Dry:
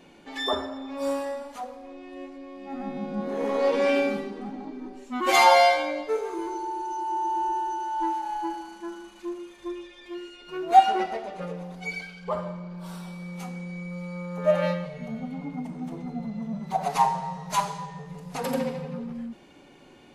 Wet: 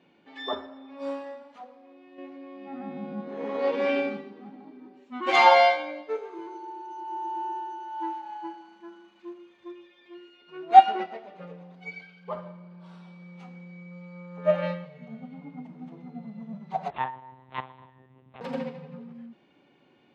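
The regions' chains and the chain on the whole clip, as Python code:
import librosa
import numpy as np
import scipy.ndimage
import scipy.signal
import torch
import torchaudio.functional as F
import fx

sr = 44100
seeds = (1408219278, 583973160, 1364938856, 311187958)

y = fx.chain(x, sr, fx.high_shelf(hz=5600.0, db=-6.5),
    fx.env_flatten(amount_pct=50), at=(2.18, 3.2))
y = fx.chain(y, sr, fx.tube_stage(drive_db=18.0, bias=0.75),
    fx.lpc_monotone(seeds[0], pitch_hz=130.0, order=10), at=(16.9, 18.41))
y = scipy.signal.sosfilt(scipy.signal.cheby1(2, 1.0, [130.0, 3200.0], 'bandpass', fs=sr, output='sos'), y)
y = fx.upward_expand(y, sr, threshold_db=-36.0, expansion=1.5)
y = y * 10.0 ** (4.0 / 20.0)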